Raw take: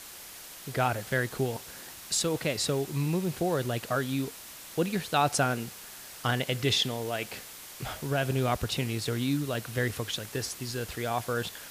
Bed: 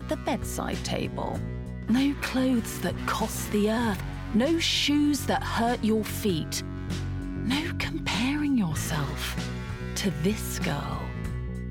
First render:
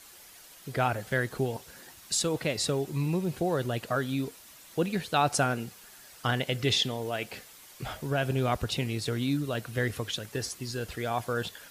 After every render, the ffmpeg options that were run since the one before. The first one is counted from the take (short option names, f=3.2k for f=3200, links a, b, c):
-af "afftdn=nr=8:nf=-46"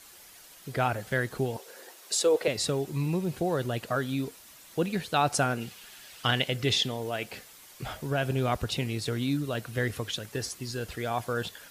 -filter_complex "[0:a]asettb=1/sr,asplit=3[a][b][c];[a]atrim=end=1.584[d];[b]atrim=start=1.58:end=2.48,asetpts=PTS-STARTPTS,afade=t=in:d=0.004:c=qsin,afade=t=out:st=0.896:d=0.004:c=qsin,highpass=f=450:t=q:w=3[e];[c]atrim=start=2.476[f];[d][e]acrossfade=d=0.004:c1=hsin:c2=qsin[g];[g][f]acrossfade=d=0.004:c1=qsin:c2=hsin,asettb=1/sr,asplit=3[h][i][j];[h]atrim=end=5.614[k];[i]atrim=start=5.61:end=6.48,asetpts=PTS-STARTPTS,afade=t=in:d=0.004:c=qsin,afade=t=out:st=0.866:d=0.004:c=qsin,equalizer=f=3k:t=o:w=1.1:g=8.5[l];[j]atrim=start=6.476[m];[k][l]acrossfade=d=0.004:c1=hsin:c2=qsin[n];[n][m]acrossfade=d=0.004:c1=qsin:c2=hsin"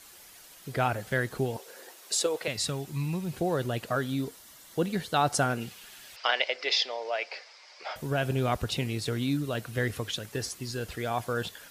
-filter_complex "[0:a]asettb=1/sr,asplit=3[a][b][c];[a]atrim=end=2.264[d];[b]atrim=start=2.26:end=3.33,asetpts=PTS-STARTPTS,afade=t=in:d=0.004:c=qsin,afade=t=out:st=1.066:d=0.004:c=qsin,equalizer=f=420:w=0.95:g=-8.5[e];[c]atrim=start=3.326[f];[d][e]acrossfade=d=0.004:c1=hsin:c2=qsin[g];[g][f]acrossfade=d=0.004:c1=qsin:c2=hsin,asettb=1/sr,asplit=3[h][i][j];[h]atrim=end=4.084[k];[i]atrim=start=4.08:end=5.5,asetpts=PTS-STARTPTS,afade=t=in:d=0.004:c=qsin,afade=t=out:st=1.416:d=0.004:c=qsin,bandreject=f=2.5k:w=7.7[l];[j]atrim=start=5.496[m];[k][l]acrossfade=d=0.004:c1=hsin:c2=qsin[n];[n][m]acrossfade=d=0.004:c1=qsin:c2=hsin,asettb=1/sr,asplit=3[o][p][q];[o]atrim=end=6.164[r];[p]atrim=start=6.16:end=7.96,asetpts=PTS-STARTPTS,afade=t=in:d=0.004:c=qsin,afade=t=out:st=1.796:d=0.004:c=qsin,highpass=f=480:w=0.5412,highpass=f=480:w=1.3066,equalizer=f=600:t=q:w=4:g=5,equalizer=f=910:t=q:w=4:g=3,equalizer=f=2.2k:t=q:w=4:g=6,equalizer=f=3.3k:t=q:w=4:g=-4,equalizer=f=5k:t=q:w=4:g=10,lowpass=f=5.3k:w=0.5412,lowpass=f=5.3k:w=1.3066[s];[q]atrim=start=7.956[t];[r][s]acrossfade=d=0.004:c1=hsin:c2=qsin[u];[u][t]acrossfade=d=0.004:c1=qsin:c2=hsin"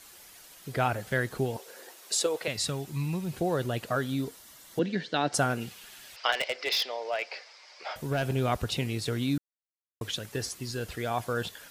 -filter_complex "[0:a]asettb=1/sr,asplit=3[a][b][c];[a]atrim=end=4.794[d];[b]atrim=start=4.79:end=5.34,asetpts=PTS-STARTPTS,afade=t=in:d=0.004:c=qsin,afade=t=out:st=0.546:d=0.004:c=qsin,highpass=f=160:w=0.5412,highpass=f=160:w=1.3066,equalizer=f=290:t=q:w=4:g=4,equalizer=f=800:t=q:w=4:g=-6,equalizer=f=1.2k:t=q:w=4:g=-9,equalizer=f=1.7k:t=q:w=4:g=5,lowpass=f=5.5k:w=0.5412,lowpass=f=5.5k:w=1.3066[e];[c]atrim=start=5.336[f];[d][e]acrossfade=d=0.004:c1=hsin:c2=qsin[g];[g][f]acrossfade=d=0.004:c1=qsin:c2=hsin,asettb=1/sr,asplit=3[h][i][j];[h]atrim=end=6.324[k];[i]atrim=start=6.32:end=8.35,asetpts=PTS-STARTPTS,afade=t=in:d=0.004:c=qsin,afade=t=out:st=2.026:d=0.004:c=qsin,volume=23dB,asoftclip=hard,volume=-23dB[l];[j]atrim=start=8.346[m];[k][l]acrossfade=d=0.004:c1=hsin:c2=qsin[n];[n][m]acrossfade=d=0.004:c1=qsin:c2=hsin,asplit=3[o][p][q];[o]atrim=end=9.38,asetpts=PTS-STARTPTS,afade=t=out:st=9.376:d=0.004:c=hsin[r];[p]atrim=start=9.38:end=10.01,asetpts=PTS-STARTPTS,volume=0[s];[q]atrim=start=10.01,asetpts=PTS-STARTPTS,afade=t=in:d=0.004:c=hsin[t];[r][s][t]concat=n=3:v=0:a=1"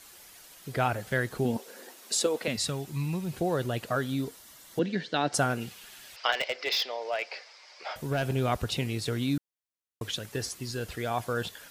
-filter_complex "[0:a]asettb=1/sr,asplit=3[a][b][c];[a]atrim=end=1.454[d];[b]atrim=start=1.45:end=2.56,asetpts=PTS-STARTPTS,afade=t=in:d=0.004:c=qsin,afade=t=out:st=1.106:d=0.004:c=qsin,equalizer=f=230:w=2.5:g=13[e];[c]atrim=start=2.556[f];[d][e]acrossfade=d=0.004:c1=hsin:c2=qsin[g];[g][f]acrossfade=d=0.004:c1=qsin:c2=hsin,asettb=1/sr,asplit=3[h][i][j];[h]atrim=end=6.264[k];[i]atrim=start=6.26:end=7.01,asetpts=PTS-STARTPTS,afade=t=in:d=0.004:c=qsin,afade=t=out:st=0.746:d=0.004:c=qsin,equalizer=f=9.9k:t=o:w=0.37:g=-11.5[l];[j]atrim=start=7.006[m];[k][l]acrossfade=d=0.004:c1=hsin:c2=qsin[n];[n][m]acrossfade=d=0.004:c1=qsin:c2=hsin"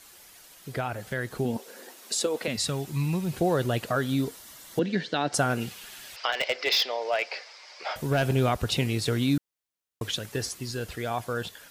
-af "alimiter=limit=-19dB:level=0:latency=1:release=177,dynaudnorm=f=910:g=5:m=4.5dB"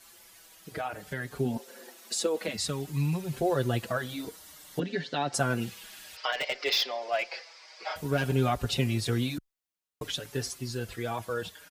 -filter_complex "[0:a]asplit=2[a][b];[b]adelay=5.4,afreqshift=-0.56[c];[a][c]amix=inputs=2:normalize=1"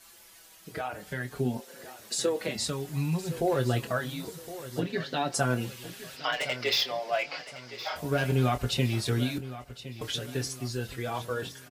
-filter_complex "[0:a]asplit=2[a][b];[b]adelay=24,volume=-9.5dB[c];[a][c]amix=inputs=2:normalize=0,aecho=1:1:1065|2130|3195|4260:0.188|0.0772|0.0317|0.013"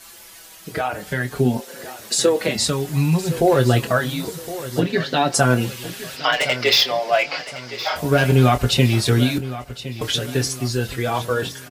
-af "volume=11dB,alimiter=limit=-3dB:level=0:latency=1"